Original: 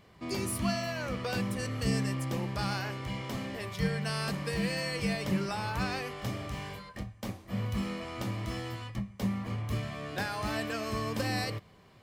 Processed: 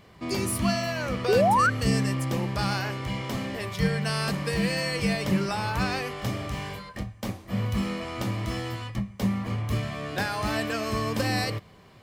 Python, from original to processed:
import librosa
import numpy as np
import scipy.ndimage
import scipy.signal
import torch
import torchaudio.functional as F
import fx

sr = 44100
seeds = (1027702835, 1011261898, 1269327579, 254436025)

y = fx.spec_paint(x, sr, seeds[0], shape='rise', start_s=1.28, length_s=0.42, low_hz=370.0, high_hz=1600.0, level_db=-26.0)
y = y * librosa.db_to_amplitude(5.5)